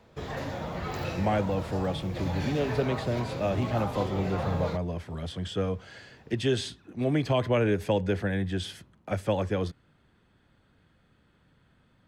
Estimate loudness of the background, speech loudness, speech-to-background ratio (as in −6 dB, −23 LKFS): −35.0 LKFS, −30.0 LKFS, 5.0 dB